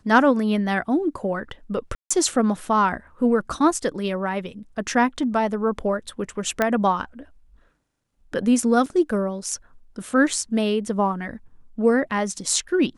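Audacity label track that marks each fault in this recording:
1.950000	2.100000	dropout 155 ms
6.620000	6.620000	pop -7 dBFS
8.860000	8.860000	dropout 4 ms

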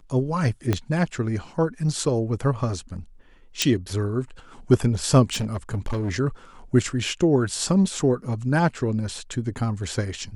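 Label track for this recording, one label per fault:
0.730000	0.730000	pop -9 dBFS
3.620000	3.620000	pop -6 dBFS
5.320000	6.110000	clipped -22 dBFS

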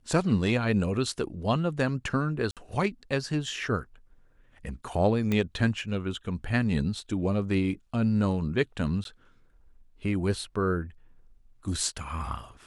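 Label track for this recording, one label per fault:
2.510000	2.570000	dropout 57 ms
5.320000	5.320000	pop -15 dBFS
9.040000	9.050000	dropout 12 ms

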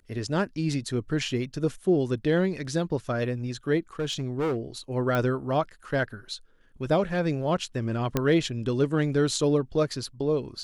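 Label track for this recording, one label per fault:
3.990000	4.580000	clipped -23.5 dBFS
5.150000	5.150000	pop -15 dBFS
8.170000	8.170000	pop -10 dBFS

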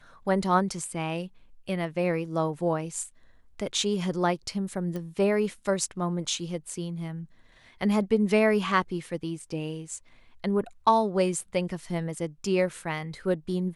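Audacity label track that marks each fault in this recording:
4.960000	4.960000	pop -23 dBFS

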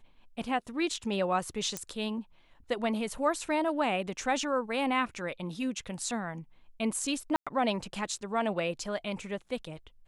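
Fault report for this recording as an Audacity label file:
1.770000	1.770000	pop -17 dBFS
7.360000	7.470000	dropout 106 ms

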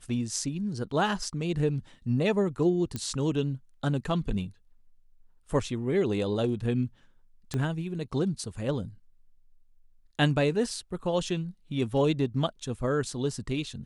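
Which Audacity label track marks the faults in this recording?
2.960000	2.960000	pop -18 dBFS
7.540000	7.540000	pop -19 dBFS

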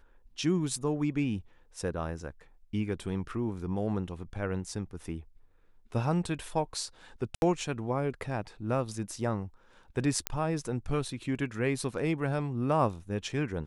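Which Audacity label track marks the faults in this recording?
7.350000	7.420000	dropout 71 ms
10.270000	10.270000	pop -10 dBFS

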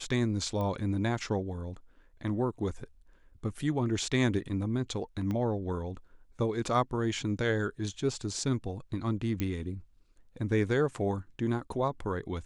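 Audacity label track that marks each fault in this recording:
0.610000	0.610000	pop -24 dBFS
5.310000	5.310000	pop -23 dBFS
9.400000	9.400000	pop -17 dBFS

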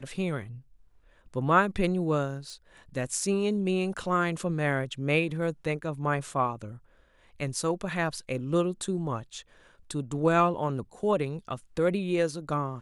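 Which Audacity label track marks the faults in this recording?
2.500000	2.500000	pop

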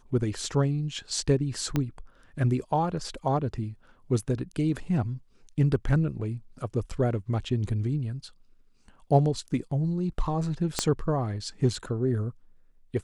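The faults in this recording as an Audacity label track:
1.760000	1.760000	pop -13 dBFS
10.790000	10.790000	pop -9 dBFS

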